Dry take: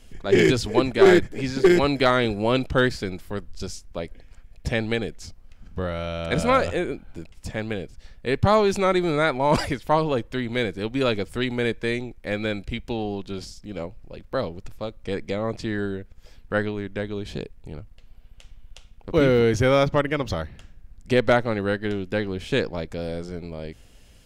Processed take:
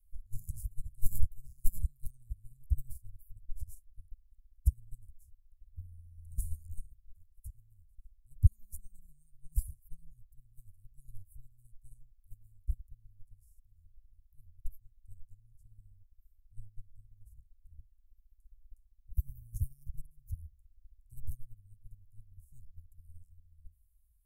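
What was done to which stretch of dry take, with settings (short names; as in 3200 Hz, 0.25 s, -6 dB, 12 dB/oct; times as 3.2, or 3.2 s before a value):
6.11–6.56 reverb throw, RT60 1.1 s, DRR 4 dB
whole clip: inverse Chebyshev band-stop 310–3500 Hz, stop band 70 dB; high shelf 4600 Hz +7 dB; upward expander 2.5:1, over -43 dBFS; gain +11.5 dB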